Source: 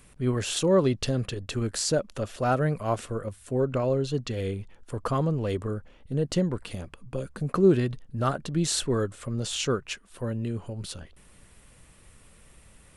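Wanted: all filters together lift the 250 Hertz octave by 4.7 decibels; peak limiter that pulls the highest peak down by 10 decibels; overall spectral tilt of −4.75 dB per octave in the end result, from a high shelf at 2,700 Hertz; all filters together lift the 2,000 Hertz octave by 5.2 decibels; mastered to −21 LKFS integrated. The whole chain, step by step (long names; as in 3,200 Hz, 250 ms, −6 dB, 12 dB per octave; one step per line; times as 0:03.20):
parametric band 250 Hz +6.5 dB
parametric band 2,000 Hz +3.5 dB
high-shelf EQ 2,700 Hz +8 dB
level +5.5 dB
brickwall limiter −9 dBFS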